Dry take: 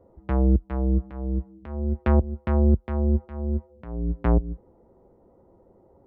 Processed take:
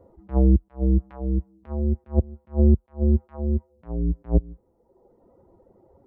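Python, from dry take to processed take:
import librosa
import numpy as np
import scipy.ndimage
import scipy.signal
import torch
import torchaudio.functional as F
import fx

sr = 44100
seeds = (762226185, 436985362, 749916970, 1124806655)

y = fx.dereverb_blind(x, sr, rt60_s=0.96)
y = fx.hpss(y, sr, part='percussive', gain_db=-5)
y = fx.attack_slew(y, sr, db_per_s=320.0)
y = y * 10.0 ** (4.5 / 20.0)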